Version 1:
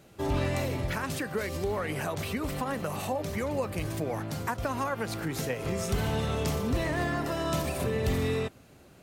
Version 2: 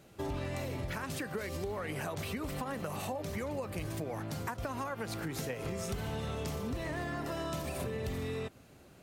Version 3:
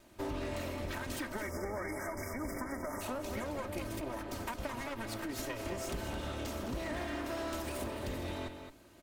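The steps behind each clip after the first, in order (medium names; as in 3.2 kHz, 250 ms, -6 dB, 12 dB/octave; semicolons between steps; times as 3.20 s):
compression, threshold -31 dBFS, peak gain reduction 8 dB; trim -2.5 dB
comb filter that takes the minimum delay 3.2 ms; spectral selection erased 1.29–3.01 s, 2.3–4.9 kHz; echo from a far wall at 37 m, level -7 dB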